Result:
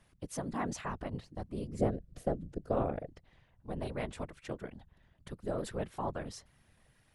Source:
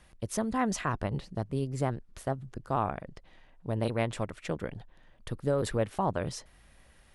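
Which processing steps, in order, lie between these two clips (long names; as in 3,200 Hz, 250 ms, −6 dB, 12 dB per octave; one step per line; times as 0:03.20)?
0:01.79–0:03.08: low shelf with overshoot 690 Hz +7 dB, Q 3
random phases in short frames
level −7.5 dB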